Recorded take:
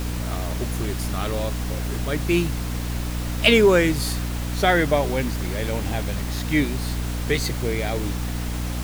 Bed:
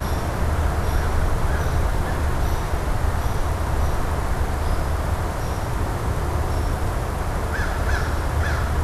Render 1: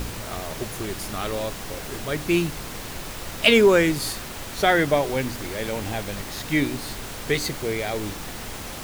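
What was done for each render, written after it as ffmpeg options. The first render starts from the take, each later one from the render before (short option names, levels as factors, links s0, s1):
-af "bandreject=f=60:t=h:w=4,bandreject=f=120:t=h:w=4,bandreject=f=180:t=h:w=4,bandreject=f=240:t=h:w=4,bandreject=f=300:t=h:w=4"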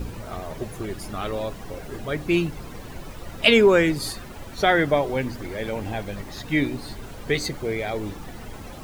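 -af "afftdn=nr=12:nf=-35"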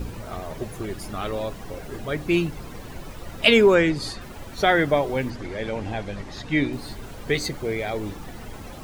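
-filter_complex "[0:a]asplit=3[s0][s1][s2];[s0]afade=t=out:st=3.74:d=0.02[s3];[s1]lowpass=6800,afade=t=in:st=3.74:d=0.02,afade=t=out:st=4.2:d=0.02[s4];[s2]afade=t=in:st=4.2:d=0.02[s5];[s3][s4][s5]amix=inputs=3:normalize=0,asettb=1/sr,asplit=3[s6][s7][s8];[s6]atrim=end=5.304[s9];[s7]atrim=start=5.3:end=6.73,asetpts=PTS-STARTPTS,afade=t=in:d=0.004:c=qsin,afade=t=out:st=1.426:d=0.004:c=qsin,lowpass=6900[s10];[s8]atrim=start=6.726[s11];[s9][s10]acrossfade=d=0.004:c1=hsin:c2=qsin[s12];[s12][s11]acrossfade=d=0.004:c1=qsin:c2=hsin"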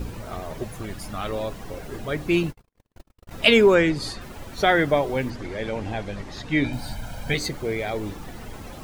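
-filter_complex "[0:a]asettb=1/sr,asplit=3[s0][s1][s2];[s0]atrim=end=0.644[s3];[s1]atrim=start=0.64:end=1.29,asetpts=PTS-STARTPTS,afade=t=in:d=0.004:c=qsin,afade=t=out:st=0.646:d=0.004:c=qsin,equalizer=f=380:t=o:w=0.38:g=-10[s4];[s2]atrim=start=1.286[s5];[s3][s4]acrossfade=d=0.004:c1=hsin:c2=qsin[s6];[s6][s5]acrossfade=d=0.004:c1=qsin:c2=hsin,asettb=1/sr,asplit=3[s7][s8][s9];[s7]atrim=end=2.434[s10];[s8]atrim=start=2.43:end=3.31,asetpts=PTS-STARTPTS,afade=t=in:d=0.004:c=qsin,afade=t=out:st=0.876:d=0.004:c=qsin,agate=range=0.00224:threshold=0.0251:ratio=16:release=100:detection=peak[s11];[s9]atrim=start=3.306[s12];[s10][s11]acrossfade=d=0.004:c1=hsin:c2=qsin[s13];[s13][s12]acrossfade=d=0.004:c1=qsin:c2=hsin,asettb=1/sr,asplit=3[s14][s15][s16];[s14]atrim=end=6.644[s17];[s15]atrim=start=6.64:end=7.34,asetpts=PTS-STARTPTS,afade=t=in:d=0.004:c=qsin,afade=t=out:st=0.696:d=0.004:c=qsin,aecho=1:1:1.3:0.85,atrim=end_sample=30870[s18];[s16]atrim=start=7.336[s19];[s17][s18]acrossfade=d=0.004:c1=hsin:c2=qsin[s20];[s20][s19]acrossfade=d=0.004:c1=qsin:c2=hsin"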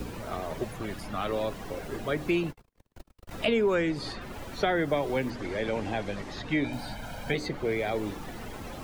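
-filter_complex "[0:a]acrossover=split=180|440|1100|4100[s0][s1][s2][s3][s4];[s0]acompressor=threshold=0.01:ratio=4[s5];[s1]acompressor=threshold=0.0316:ratio=4[s6];[s2]acompressor=threshold=0.0282:ratio=4[s7];[s3]acompressor=threshold=0.02:ratio=4[s8];[s4]acompressor=threshold=0.00251:ratio=4[s9];[s5][s6][s7][s8][s9]amix=inputs=5:normalize=0"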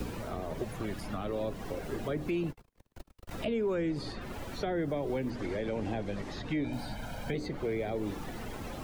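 -filter_complex "[0:a]acrossover=split=560[s0][s1];[s0]alimiter=level_in=1.19:limit=0.0631:level=0:latency=1,volume=0.841[s2];[s1]acompressor=threshold=0.00708:ratio=4[s3];[s2][s3]amix=inputs=2:normalize=0"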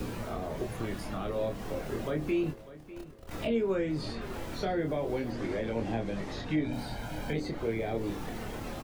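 -filter_complex "[0:a]asplit=2[s0][s1];[s1]adelay=26,volume=0.631[s2];[s0][s2]amix=inputs=2:normalize=0,aecho=1:1:598|1196|1794|2392:0.141|0.0706|0.0353|0.0177"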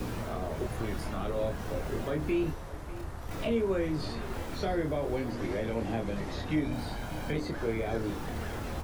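-filter_complex "[1:a]volume=0.119[s0];[0:a][s0]amix=inputs=2:normalize=0"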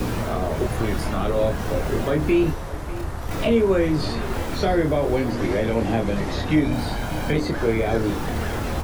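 -af "volume=3.35"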